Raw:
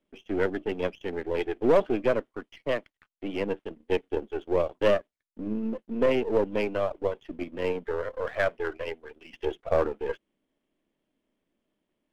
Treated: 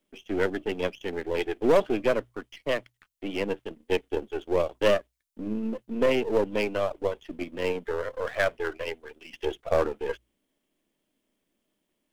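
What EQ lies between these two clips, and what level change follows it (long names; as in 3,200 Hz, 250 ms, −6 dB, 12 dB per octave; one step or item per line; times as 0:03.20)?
high-shelf EQ 3,700 Hz +11 dB
mains-hum notches 60/120 Hz
0.0 dB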